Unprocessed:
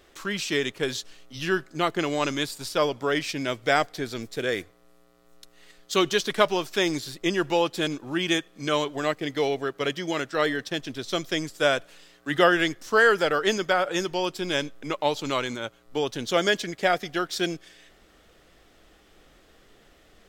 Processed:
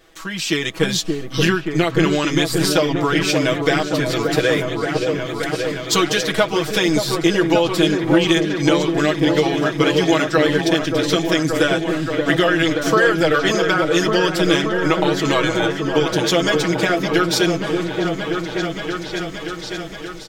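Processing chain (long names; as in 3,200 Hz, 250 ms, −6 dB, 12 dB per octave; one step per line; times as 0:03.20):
downward compressor 6 to 1, threshold −28 dBFS, peak gain reduction 14 dB
comb filter 6.2 ms, depth 93%
echo whose low-pass opens from repeat to repeat 577 ms, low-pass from 750 Hz, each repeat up 1 octave, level −3 dB
automatic gain control gain up to 10.5 dB
level +1.5 dB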